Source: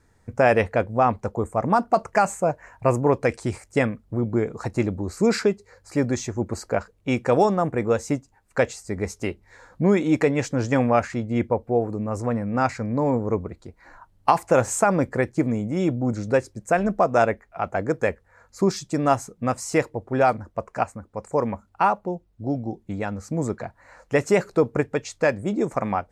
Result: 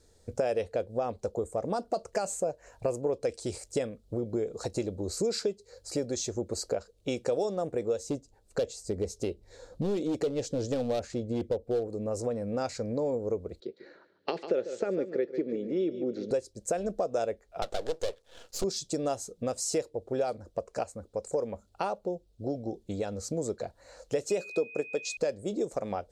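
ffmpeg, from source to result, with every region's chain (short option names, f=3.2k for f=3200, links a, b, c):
-filter_complex "[0:a]asettb=1/sr,asplit=3[a][b][c];[a]atrim=end=8.034[d];[b]atrim=start=8.03:end=11.88,asetpts=PTS-STARTPTS,afade=t=in:d=0.004:c=qsin,afade=t=out:st=3.846:d=0.004:c=qsin,tiltshelf=f=800:g=4,asoftclip=type=hard:threshold=-15.5dB[e];[c]atrim=start=11.876[f];[d][e]acrossfade=d=0.004:c1=hsin:c2=qsin[g];[g][f]acrossfade=d=0.004:c1=qsin:c2=hsin,asettb=1/sr,asplit=3[h][i][j];[h]atrim=end=13.604[k];[i]atrim=start=13.6:end=16.31,asetpts=PTS-STARTPTS,afade=t=in:d=0.004:c=qsin,afade=t=out:st=2.706:d=0.004:c=qsin,highpass=f=170:w=0.5412,highpass=f=170:w=1.3066,equalizer=f=380:t=q:w=4:g=9,equalizer=f=730:t=q:w=4:g=-10,equalizer=f=1k:t=q:w=4:g=-10,equalizer=f=1.9k:t=q:w=4:g=5,lowpass=f=3.9k:w=0.5412,lowpass=f=3.9k:w=1.3066,aecho=1:1:145|290|435:0.211|0.0592|0.0166,atrim=end_sample=119511[l];[j]atrim=start=16.306[m];[k][l]acrossfade=d=0.004:c1=hsin:c2=qsin[n];[n][m]acrossfade=d=0.004:c1=qsin:c2=hsin,asettb=1/sr,asplit=3[o][p][q];[o]atrim=end=17.624[r];[p]atrim=start=17.62:end=18.64,asetpts=PTS-STARTPTS,afade=t=in:d=0.004:c=qsin,afade=t=out:st=1.016:d=0.004:c=qsin,equalizer=f=3.1k:w=2:g=-7,asplit=2[s][t];[t]highpass=f=720:p=1,volume=16dB,asoftclip=type=tanh:threshold=-9dB[u];[s][u]amix=inputs=2:normalize=0,lowpass=f=6.3k:p=1,volume=-6dB,aeval=exprs='max(val(0),0)':c=same[v];[q]atrim=start=18.636[w];[r][v]acrossfade=d=0.004:c1=hsin:c2=qsin[x];[x][w]acrossfade=d=0.004:c1=qsin:c2=hsin,asettb=1/sr,asplit=3[y][z][aa];[y]atrim=end=24.304[ab];[z]atrim=start=24.3:end=25.17,asetpts=PTS-STARTPTS,afade=t=in:d=0.004:c=qsin,afade=t=out:st=0.866:d=0.004:c=qsin,highpass=f=160:w=0.5412,highpass=f=160:w=1.3066,aeval=exprs='val(0)+0.0355*sin(2*PI*2500*n/s)':c=same[ac];[aa]atrim=start=25.166[ad];[ab][ac]acrossfade=d=0.004:c1=hsin:c2=qsin[ae];[ae][ad]acrossfade=d=0.004:c1=qsin:c2=hsin,equalizer=f=125:t=o:w=1:g=-7,equalizer=f=250:t=o:w=1:g=-5,equalizer=f=500:t=o:w=1:g=8,equalizer=f=1k:t=o:w=1:g=-10,equalizer=f=2k:t=o:w=1:g=-10,equalizer=f=4k:t=o:w=1:g=9,equalizer=f=8k:t=o:w=1:g=4,acompressor=threshold=-30dB:ratio=3"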